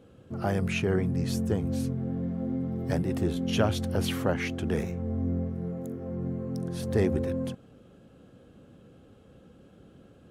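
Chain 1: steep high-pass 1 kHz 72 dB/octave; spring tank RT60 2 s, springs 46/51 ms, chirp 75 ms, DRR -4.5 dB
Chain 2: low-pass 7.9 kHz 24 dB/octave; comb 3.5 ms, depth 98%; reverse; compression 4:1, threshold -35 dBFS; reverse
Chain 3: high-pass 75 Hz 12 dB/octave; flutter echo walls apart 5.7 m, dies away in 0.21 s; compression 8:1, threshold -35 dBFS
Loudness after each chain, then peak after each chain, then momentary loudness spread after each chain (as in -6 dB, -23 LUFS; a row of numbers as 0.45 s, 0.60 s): -35.0 LUFS, -37.5 LUFS, -39.5 LUFS; -19.0 dBFS, -22.5 dBFS, -23.0 dBFS; 22 LU, 16 LU, 16 LU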